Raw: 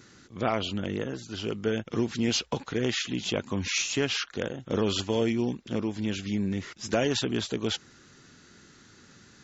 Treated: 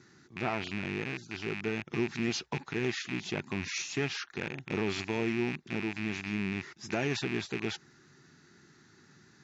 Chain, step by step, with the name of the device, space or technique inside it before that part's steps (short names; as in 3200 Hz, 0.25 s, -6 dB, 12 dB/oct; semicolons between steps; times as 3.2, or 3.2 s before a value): car door speaker with a rattle (rattling part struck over -36 dBFS, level -19 dBFS; speaker cabinet 82–6800 Hz, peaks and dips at 150 Hz +7 dB, 370 Hz +6 dB, 520 Hz -8 dB, 850 Hz +4 dB, 1800 Hz +4 dB, 3100 Hz -6 dB); gain -6.5 dB